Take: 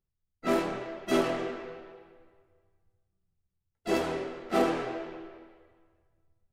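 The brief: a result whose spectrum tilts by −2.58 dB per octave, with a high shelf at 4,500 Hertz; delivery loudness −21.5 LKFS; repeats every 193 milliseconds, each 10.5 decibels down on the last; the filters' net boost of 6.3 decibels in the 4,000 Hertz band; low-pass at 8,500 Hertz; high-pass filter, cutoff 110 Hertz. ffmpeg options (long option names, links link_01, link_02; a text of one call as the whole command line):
ffmpeg -i in.wav -af "highpass=110,lowpass=8500,equalizer=frequency=4000:width_type=o:gain=6,highshelf=frequency=4500:gain=4.5,aecho=1:1:193|386|579:0.299|0.0896|0.0269,volume=8.5dB" out.wav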